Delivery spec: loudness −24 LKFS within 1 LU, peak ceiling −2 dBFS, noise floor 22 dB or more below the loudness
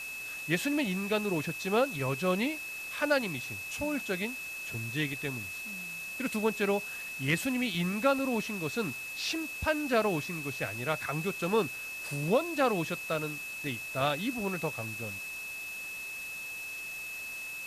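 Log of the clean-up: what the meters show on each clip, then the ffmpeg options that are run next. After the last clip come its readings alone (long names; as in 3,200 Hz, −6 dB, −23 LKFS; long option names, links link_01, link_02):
interfering tone 2,600 Hz; level of the tone −38 dBFS; background noise floor −40 dBFS; target noise floor −54 dBFS; integrated loudness −32.0 LKFS; sample peak −14.5 dBFS; target loudness −24.0 LKFS
→ -af "bandreject=frequency=2600:width=30"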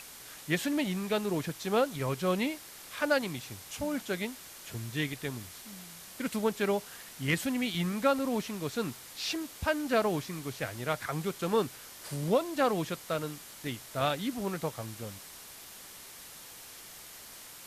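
interfering tone none found; background noise floor −49 dBFS; target noise floor −55 dBFS
→ -af "afftdn=noise_reduction=6:noise_floor=-49"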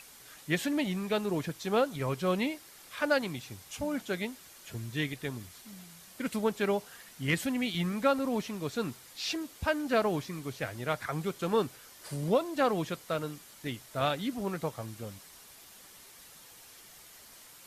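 background noise floor −54 dBFS; target noise floor −55 dBFS
→ -af "afftdn=noise_reduction=6:noise_floor=-54"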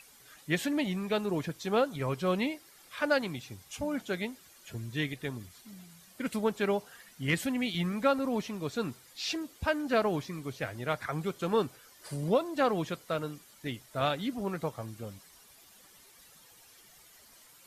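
background noise floor −58 dBFS; integrated loudness −32.5 LKFS; sample peak −15.0 dBFS; target loudness −24.0 LKFS
→ -af "volume=8.5dB"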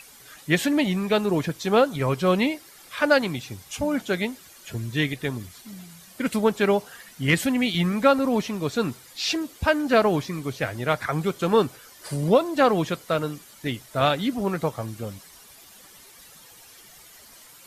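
integrated loudness −24.0 LKFS; sample peak −6.5 dBFS; background noise floor −49 dBFS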